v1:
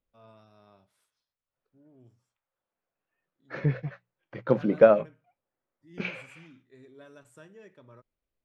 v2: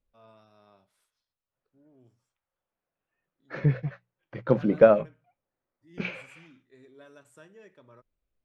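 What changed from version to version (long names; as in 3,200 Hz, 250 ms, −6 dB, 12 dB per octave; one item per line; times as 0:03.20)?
first voice: add high-pass filter 290 Hz 6 dB per octave
master: add low-shelf EQ 120 Hz +7.5 dB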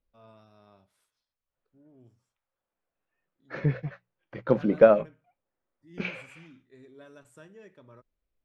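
first voice: remove high-pass filter 290 Hz 6 dB per octave
master: add parametric band 120 Hz −4.5 dB 0.78 octaves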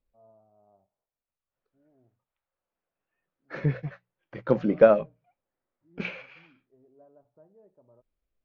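first voice: add transistor ladder low-pass 820 Hz, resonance 60%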